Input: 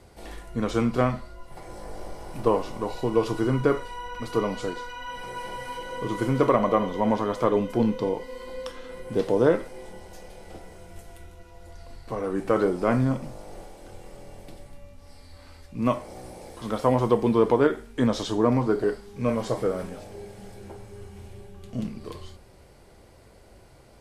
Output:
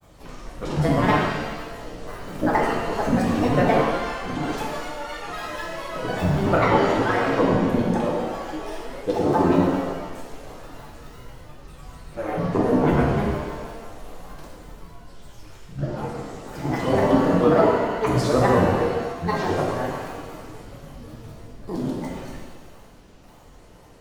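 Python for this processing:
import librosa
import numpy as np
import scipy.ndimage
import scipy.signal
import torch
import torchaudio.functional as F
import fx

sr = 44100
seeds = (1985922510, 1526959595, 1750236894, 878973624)

y = fx.granulator(x, sr, seeds[0], grain_ms=100.0, per_s=20.0, spray_ms=100.0, spread_st=12)
y = fx.rev_shimmer(y, sr, seeds[1], rt60_s=1.3, semitones=7, shimmer_db=-8, drr_db=-2.5)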